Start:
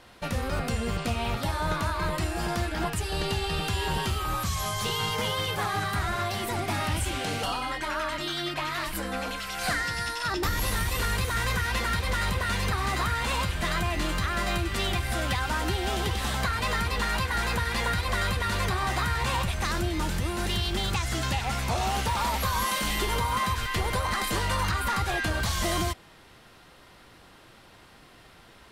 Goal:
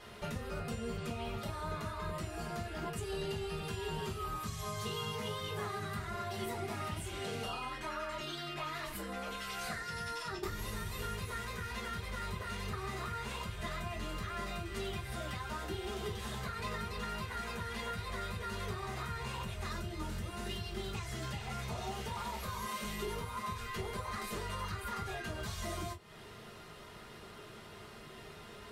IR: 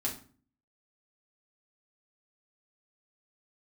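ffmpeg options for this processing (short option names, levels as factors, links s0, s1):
-filter_complex "[0:a]acompressor=threshold=0.01:ratio=6[s0];[1:a]atrim=start_sample=2205,atrim=end_sample=3969,asetrate=70560,aresample=44100[s1];[s0][s1]afir=irnorm=-1:irlink=0,volume=1.19"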